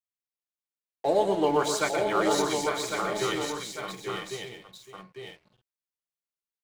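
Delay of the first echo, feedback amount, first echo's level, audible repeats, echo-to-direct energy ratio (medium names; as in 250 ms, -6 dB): 122 ms, no regular repeats, -7.5 dB, 13, 0.5 dB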